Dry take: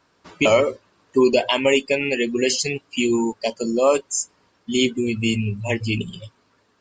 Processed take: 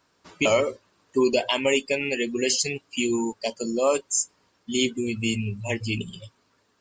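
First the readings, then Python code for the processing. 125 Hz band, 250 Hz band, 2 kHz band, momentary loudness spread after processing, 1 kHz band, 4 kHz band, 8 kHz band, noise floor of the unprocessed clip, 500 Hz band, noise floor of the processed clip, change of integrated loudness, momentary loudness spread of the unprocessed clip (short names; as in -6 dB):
-5.0 dB, -5.0 dB, -4.0 dB, 8 LU, -5.0 dB, -3.0 dB, 0.0 dB, -64 dBFS, -5.0 dB, -68 dBFS, -4.0 dB, 8 LU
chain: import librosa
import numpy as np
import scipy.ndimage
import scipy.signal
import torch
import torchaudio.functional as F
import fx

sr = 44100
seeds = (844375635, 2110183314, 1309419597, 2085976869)

y = fx.high_shelf(x, sr, hz=5800.0, db=8.5)
y = F.gain(torch.from_numpy(y), -5.0).numpy()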